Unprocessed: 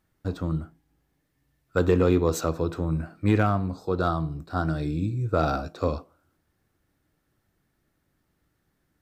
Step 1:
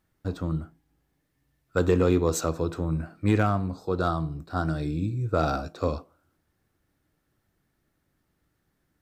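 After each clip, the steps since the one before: dynamic EQ 7600 Hz, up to +5 dB, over -53 dBFS, Q 1.2; gain -1 dB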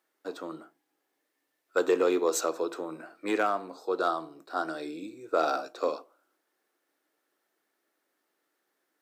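HPF 350 Hz 24 dB/oct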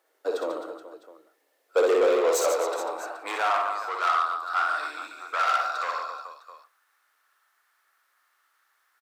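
reverse bouncing-ball echo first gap 60 ms, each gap 1.4×, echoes 5; soft clip -27.5 dBFS, distortion -8 dB; high-pass sweep 490 Hz -> 1200 Hz, 1.97–4.22; gain +5 dB

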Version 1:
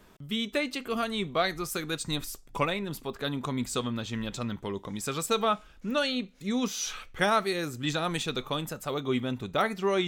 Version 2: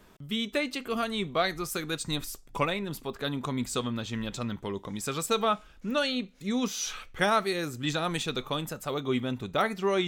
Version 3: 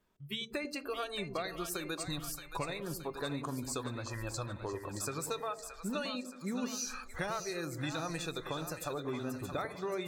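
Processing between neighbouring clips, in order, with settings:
nothing audible
spectral noise reduction 20 dB; compressor, threshold -35 dBFS, peak gain reduction 14.5 dB; split-band echo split 610 Hz, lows 98 ms, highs 0.623 s, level -8 dB

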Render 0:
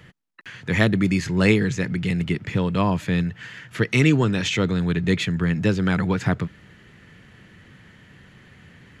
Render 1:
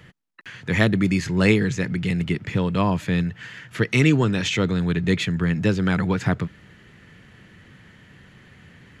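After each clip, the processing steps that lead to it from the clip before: nothing audible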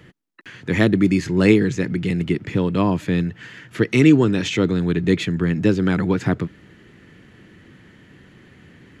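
bell 320 Hz +9 dB 0.99 oct; gain -1 dB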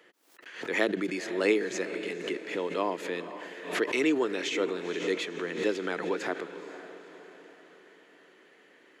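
ladder high-pass 350 Hz, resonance 25%; diffused feedback echo 0.496 s, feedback 48%, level -11.5 dB; backwards sustainer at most 100 dB/s; gain -1.5 dB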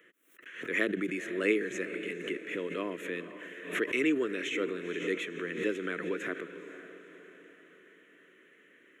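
fixed phaser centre 2000 Hz, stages 4

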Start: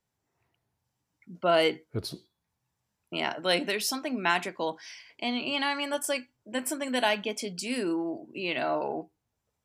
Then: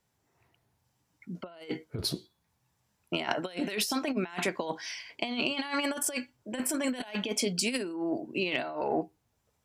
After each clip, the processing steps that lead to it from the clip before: negative-ratio compressor -33 dBFS, ratio -0.5; added harmonics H 3 -24 dB, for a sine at -13.5 dBFS; gain +3.5 dB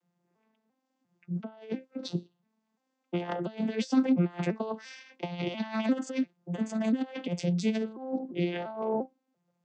arpeggiated vocoder major triad, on F3, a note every 0.346 s; gain +3 dB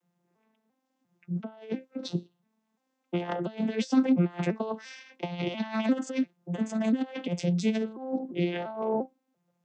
notch 4600 Hz, Q 19; gain +1.5 dB

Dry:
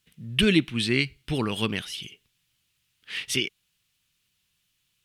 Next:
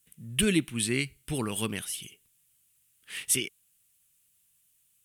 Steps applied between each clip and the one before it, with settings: resonant high shelf 6500 Hz +13 dB, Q 1.5; gain -4.5 dB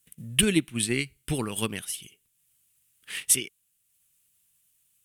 transient shaper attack +6 dB, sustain -4 dB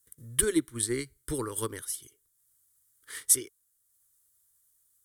fixed phaser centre 710 Hz, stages 6

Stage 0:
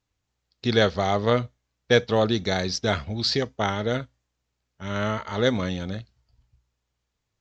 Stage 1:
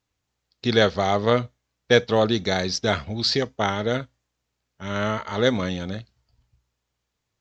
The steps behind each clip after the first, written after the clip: low shelf 80 Hz -7 dB; gain +2 dB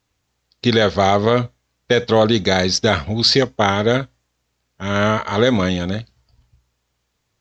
limiter -10.5 dBFS, peak gain reduction 9 dB; gain +8 dB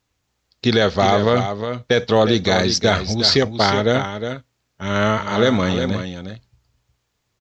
echo 0.36 s -8.5 dB; gain -1 dB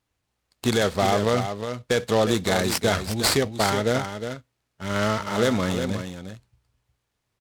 noise-modulated delay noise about 3200 Hz, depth 0.033 ms; gain -5.5 dB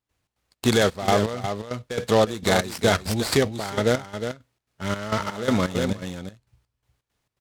step gate ".xx.xx.xxx..xx." 167 bpm -12 dB; gain +2.5 dB

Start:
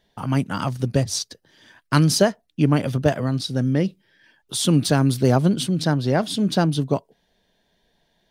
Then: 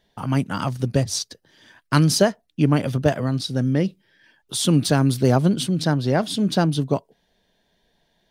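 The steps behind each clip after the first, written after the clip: nothing audible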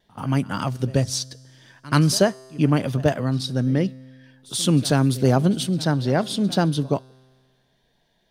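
pre-echo 82 ms -21 dB; vibrato 0.78 Hz 14 cents; resonator 130 Hz, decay 1.8 s, mix 40%; gain +3.5 dB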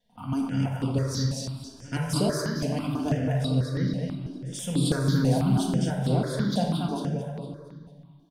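feedback echo 0.229 s, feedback 43%, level -4 dB; shoebox room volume 1200 m³, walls mixed, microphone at 1.8 m; step phaser 6.1 Hz 340–6100 Hz; gain -8.5 dB

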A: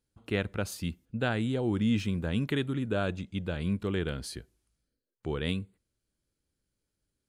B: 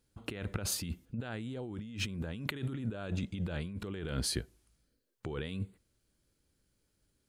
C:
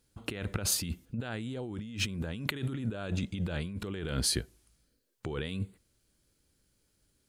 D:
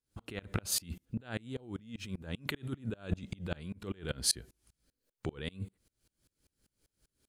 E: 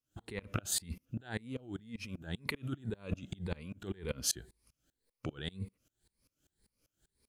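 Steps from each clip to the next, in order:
negative-ratio compressor -38 dBFS, ratio -1
bell 10000 Hz +3.5 dB 2.9 oct; gain +2.5 dB
dB-ramp tremolo swelling 5.1 Hz, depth 29 dB; gain +4.5 dB
moving spectral ripple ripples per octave 0.9, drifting +1.9 Hz, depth 10 dB; gain -2 dB

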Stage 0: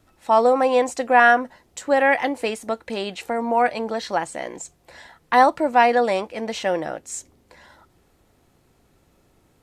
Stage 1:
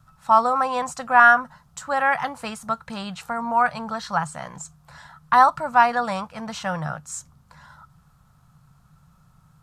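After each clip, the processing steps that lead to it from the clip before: EQ curve 100 Hz 0 dB, 150 Hz +11 dB, 340 Hz -24 dB, 1300 Hz +6 dB, 2000 Hz -11 dB, 5000 Hz -5 dB; gain +3.5 dB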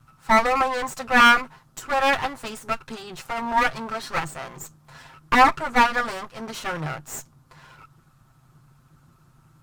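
minimum comb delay 7.6 ms; gain +1 dB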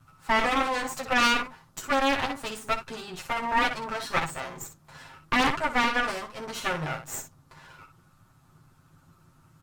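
early reflections 11 ms -5 dB, 61 ms -8.5 dB; added harmonics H 4 -6 dB, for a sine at -1.5 dBFS; limiter -9 dBFS, peak gain reduction 11 dB; gain -2.5 dB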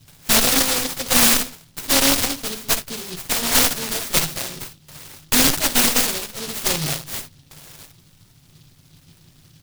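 noise-modulated delay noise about 4000 Hz, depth 0.36 ms; gain +7.5 dB

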